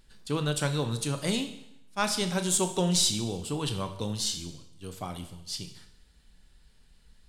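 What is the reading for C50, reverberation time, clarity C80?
11.0 dB, 0.75 s, 13.0 dB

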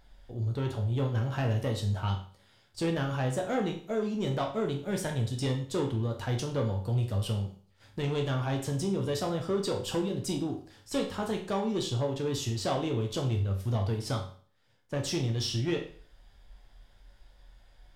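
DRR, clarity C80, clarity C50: 1.0 dB, 12.5 dB, 8.5 dB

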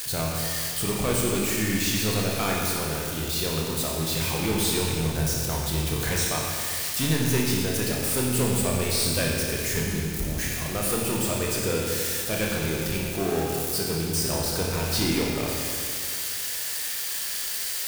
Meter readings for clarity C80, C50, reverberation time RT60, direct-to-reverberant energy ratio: 1.0 dB, −0.5 dB, 2.3 s, −3.0 dB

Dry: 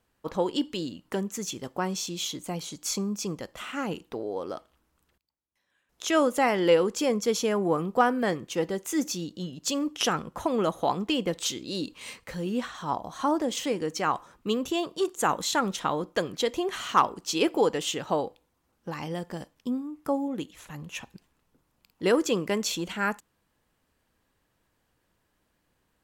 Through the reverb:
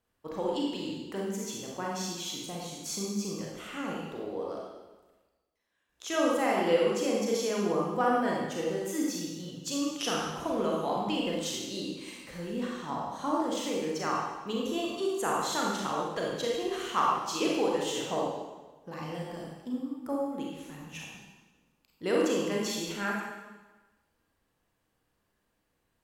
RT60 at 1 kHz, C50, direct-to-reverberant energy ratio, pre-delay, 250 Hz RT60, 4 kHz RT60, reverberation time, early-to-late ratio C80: 1.2 s, −1.0 dB, −3.5 dB, 30 ms, 1.2 s, 1.1 s, 1.2 s, 2.0 dB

